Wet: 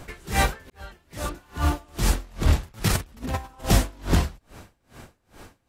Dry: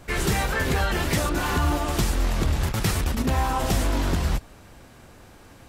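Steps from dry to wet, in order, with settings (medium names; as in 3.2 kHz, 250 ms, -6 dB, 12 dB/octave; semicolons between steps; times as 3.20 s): 0.70–2.26 s: fade in linear; 2.88–3.65 s: compressor with a negative ratio -26 dBFS, ratio -0.5; logarithmic tremolo 2.4 Hz, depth 31 dB; trim +6 dB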